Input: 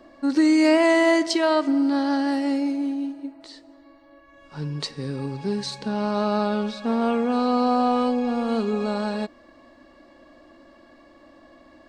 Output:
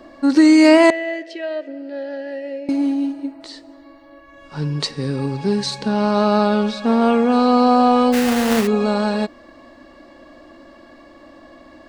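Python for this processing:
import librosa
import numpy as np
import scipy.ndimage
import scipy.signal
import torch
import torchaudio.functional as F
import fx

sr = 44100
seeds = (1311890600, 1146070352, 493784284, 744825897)

y = fx.vowel_filter(x, sr, vowel='e', at=(0.9, 2.69))
y = fx.sample_hold(y, sr, seeds[0], rate_hz=2300.0, jitter_pct=20, at=(8.12, 8.66), fade=0.02)
y = y * librosa.db_to_amplitude(7.0)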